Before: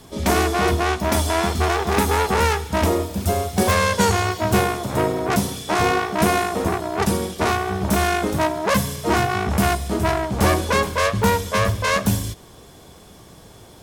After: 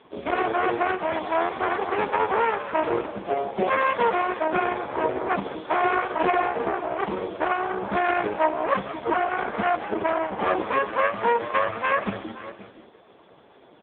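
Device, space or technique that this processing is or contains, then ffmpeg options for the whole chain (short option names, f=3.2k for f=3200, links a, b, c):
satellite phone: -filter_complex "[0:a]asplit=5[a][b][c][d][e];[b]adelay=173,afreqshift=120,volume=-11.5dB[f];[c]adelay=346,afreqshift=240,volume=-20.6dB[g];[d]adelay=519,afreqshift=360,volume=-29.7dB[h];[e]adelay=692,afreqshift=480,volume=-38.9dB[i];[a][f][g][h][i]amix=inputs=5:normalize=0,highpass=320,lowpass=3k,aecho=1:1:522:0.168" -ar 8000 -c:a libopencore_amrnb -b:a 4750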